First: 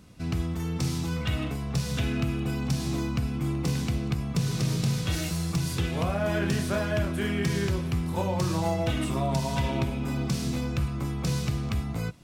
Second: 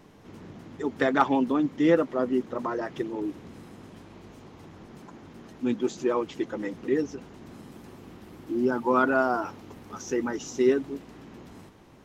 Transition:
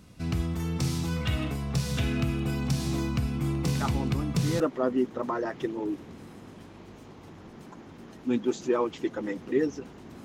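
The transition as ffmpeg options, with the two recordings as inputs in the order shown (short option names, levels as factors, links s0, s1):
-filter_complex "[1:a]asplit=2[s0][s1];[0:a]apad=whole_dur=10.24,atrim=end=10.24,atrim=end=4.602[s2];[s1]atrim=start=1.958:end=7.6[s3];[s0]atrim=start=1.16:end=1.96,asetpts=PTS-STARTPTS,volume=0.282,afade=t=in:d=0.004:c=hsin,afade=t=out:st=0.796:d=0.004:c=hsin,adelay=3800[s4];[s2][s3]acrossfade=d=0.004:c1=hsin:c2=hsin[s5];[s5][s4]amix=inputs=2:normalize=0"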